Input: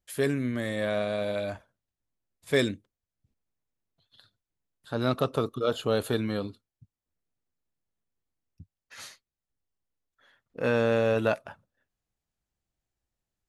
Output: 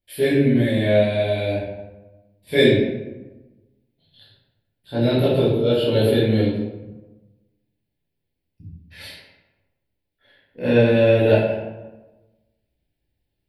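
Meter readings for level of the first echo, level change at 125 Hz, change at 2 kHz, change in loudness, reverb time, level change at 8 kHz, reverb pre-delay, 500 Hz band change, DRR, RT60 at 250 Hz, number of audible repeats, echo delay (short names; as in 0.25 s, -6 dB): none, +12.5 dB, +6.5 dB, +9.5 dB, 1.1 s, n/a, 12 ms, +10.0 dB, -11.5 dB, 1.3 s, none, none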